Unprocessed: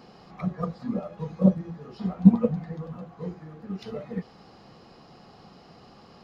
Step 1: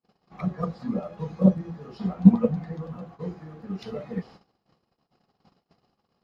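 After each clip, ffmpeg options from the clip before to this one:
-af "agate=range=-42dB:threshold=-47dB:ratio=16:detection=peak,volume=1dB"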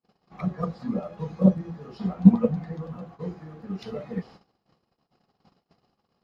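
-af anull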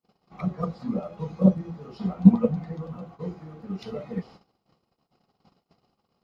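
-af "bandreject=f=1.7k:w=8.1"

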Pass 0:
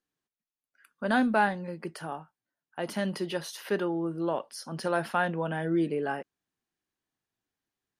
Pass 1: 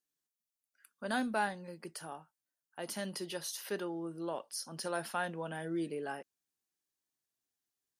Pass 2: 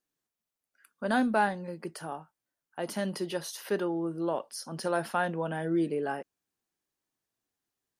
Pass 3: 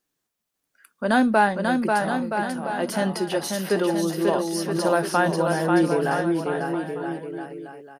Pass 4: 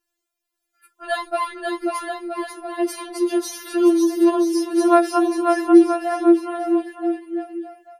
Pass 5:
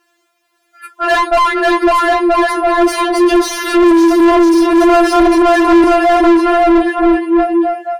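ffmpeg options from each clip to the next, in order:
-af "bass=f=250:g=-3,treble=f=4k:g=12,volume=-8.5dB"
-af "highshelf=f=2.1k:g=-9,volume=8.5dB"
-af "aecho=1:1:540|972|1318|1594|1815:0.631|0.398|0.251|0.158|0.1,volume=7.5dB"
-af "afftfilt=real='re*4*eq(mod(b,16),0)':imag='im*4*eq(mod(b,16),0)':win_size=2048:overlap=0.75,volume=2dB"
-filter_complex "[0:a]asplit=2[a][b];[b]highpass=f=720:p=1,volume=35dB,asoftclip=type=tanh:threshold=-1dB[c];[a][c]amix=inputs=2:normalize=0,lowpass=f=1.3k:p=1,volume=-6dB"

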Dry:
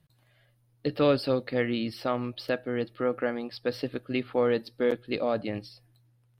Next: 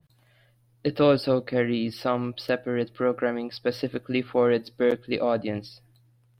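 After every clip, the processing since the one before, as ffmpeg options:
-af "adynamicequalizer=threshold=0.01:dfrequency=1600:dqfactor=0.7:tfrequency=1600:tqfactor=0.7:attack=5:release=100:ratio=0.375:range=2:mode=cutabove:tftype=highshelf,volume=3.5dB"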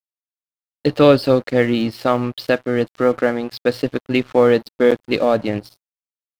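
-af "aeval=exprs='sgn(val(0))*max(abs(val(0))-0.00631,0)':c=same,volume=8.5dB"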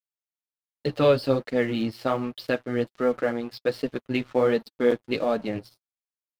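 -af "flanger=delay=4.4:depth=4.8:regen=-28:speed=1.3:shape=sinusoidal,volume=-4.5dB"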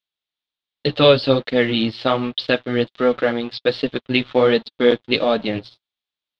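-af "lowpass=f=3.6k:t=q:w=4.2,volume=6dB"

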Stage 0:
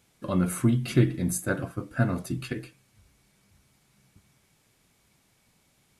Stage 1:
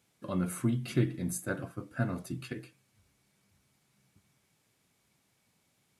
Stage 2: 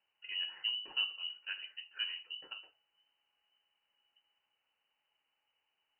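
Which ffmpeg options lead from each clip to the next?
-af "highpass=82,volume=-6.5dB"
-af "lowpass=f=2.6k:t=q:w=0.5098,lowpass=f=2.6k:t=q:w=0.6013,lowpass=f=2.6k:t=q:w=0.9,lowpass=f=2.6k:t=q:w=2.563,afreqshift=-3100,bandreject=f=50:t=h:w=6,bandreject=f=100:t=h:w=6,volume=-7.5dB"

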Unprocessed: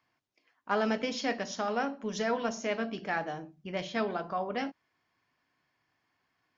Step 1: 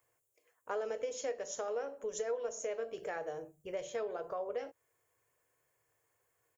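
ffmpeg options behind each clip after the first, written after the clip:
-af "firequalizer=gain_entry='entry(120,0);entry(200,-20);entry(470,10);entry(720,-4);entry(4900,-10);entry(7300,15)':delay=0.05:min_phase=1,acompressor=threshold=-37dB:ratio=3"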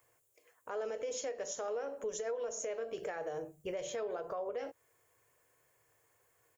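-af "alimiter=level_in=12.5dB:limit=-24dB:level=0:latency=1:release=139,volume=-12.5dB,volume=6dB"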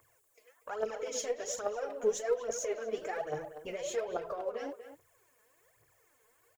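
-filter_complex "[0:a]aphaser=in_gain=1:out_gain=1:delay=4.8:decay=0.72:speed=1.2:type=triangular,asplit=2[a][b];[b]adelay=240,highpass=300,lowpass=3.4k,asoftclip=type=hard:threshold=-29dB,volume=-10dB[c];[a][c]amix=inputs=2:normalize=0"

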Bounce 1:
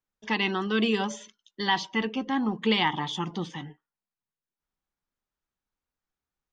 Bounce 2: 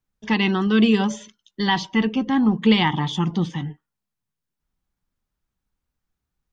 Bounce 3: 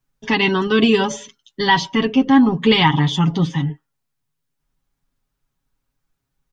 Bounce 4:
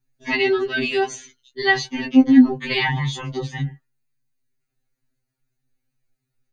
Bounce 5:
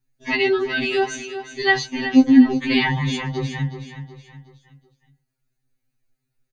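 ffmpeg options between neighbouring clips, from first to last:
-af "bass=f=250:g=11,treble=f=4k:g=0,volume=3.5dB"
-af "aecho=1:1:7.3:0.69,volume=4dB"
-af "afftfilt=real='re*2.45*eq(mod(b,6),0)':imag='im*2.45*eq(mod(b,6),0)':win_size=2048:overlap=0.75,volume=-1dB"
-af "aecho=1:1:370|740|1110|1480:0.282|0.118|0.0497|0.0209"

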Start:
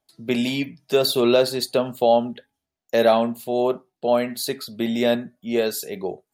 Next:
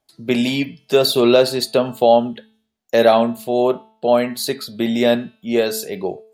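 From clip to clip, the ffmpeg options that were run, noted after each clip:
-af "highshelf=f=12k:g=-4.5,bandreject=f=219.8:t=h:w=4,bandreject=f=439.6:t=h:w=4,bandreject=f=659.4:t=h:w=4,bandreject=f=879.2:t=h:w=4,bandreject=f=1.099k:t=h:w=4,bandreject=f=1.3188k:t=h:w=4,bandreject=f=1.5386k:t=h:w=4,bandreject=f=1.7584k:t=h:w=4,bandreject=f=1.9782k:t=h:w=4,bandreject=f=2.198k:t=h:w=4,bandreject=f=2.4178k:t=h:w=4,bandreject=f=2.6376k:t=h:w=4,bandreject=f=2.8574k:t=h:w=4,bandreject=f=3.0772k:t=h:w=4,bandreject=f=3.297k:t=h:w=4,bandreject=f=3.5168k:t=h:w=4,bandreject=f=3.7366k:t=h:w=4,bandreject=f=3.9564k:t=h:w=4,bandreject=f=4.1762k:t=h:w=4,bandreject=f=4.396k:t=h:w=4,bandreject=f=4.6158k:t=h:w=4,bandreject=f=4.8356k:t=h:w=4,bandreject=f=5.0554k:t=h:w=4,bandreject=f=5.2752k:t=h:w=4,volume=4.5dB"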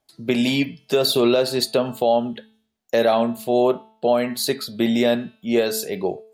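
-af "alimiter=limit=-8.5dB:level=0:latency=1:release=197"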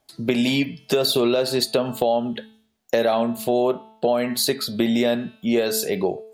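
-af "acompressor=threshold=-27dB:ratio=2.5,volume=6.5dB"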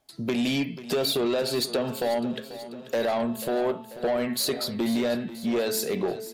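-af "asoftclip=type=tanh:threshold=-17.5dB,aecho=1:1:489|978|1467|1956|2445|2934:0.188|0.113|0.0678|0.0407|0.0244|0.0146,volume=-2.5dB"

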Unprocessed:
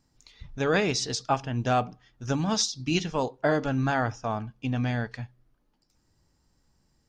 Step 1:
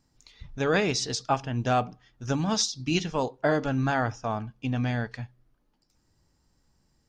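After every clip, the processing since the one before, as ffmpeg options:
-af anull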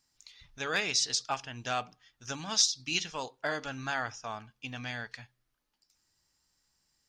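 -af "volume=13.5dB,asoftclip=hard,volume=-13.5dB,tiltshelf=f=970:g=-9.5,volume=-7dB"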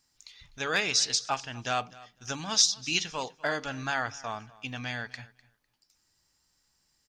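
-af "aecho=1:1:251|502:0.0891|0.0143,volume=3dB"

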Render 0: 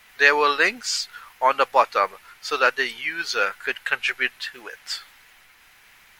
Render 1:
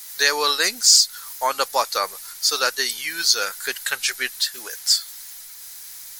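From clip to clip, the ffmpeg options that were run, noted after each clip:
-filter_complex "[0:a]aexciter=amount=7.6:drive=7.5:freq=4k,asplit=2[a][b];[b]acompressor=threshold=-21dB:ratio=6,volume=1dB[c];[a][c]amix=inputs=2:normalize=0,volume=-7dB"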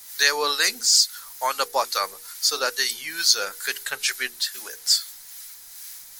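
-filter_complex "[0:a]bandreject=f=60:t=h:w=6,bandreject=f=120:t=h:w=6,bandreject=f=180:t=h:w=6,bandreject=f=240:t=h:w=6,bandreject=f=300:t=h:w=6,bandreject=f=360:t=h:w=6,bandreject=f=420:t=h:w=6,bandreject=f=480:t=h:w=6,acrossover=split=1000[a][b];[a]aeval=exprs='val(0)*(1-0.5/2+0.5/2*cos(2*PI*2.3*n/s))':c=same[c];[b]aeval=exprs='val(0)*(1-0.5/2-0.5/2*cos(2*PI*2.3*n/s))':c=same[d];[c][d]amix=inputs=2:normalize=0"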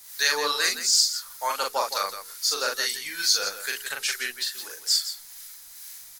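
-af "aecho=1:1:40.82|166.2:0.708|0.316,volume=-4.5dB"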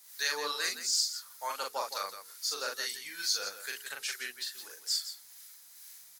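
-af "highpass=120,volume=-9dB"

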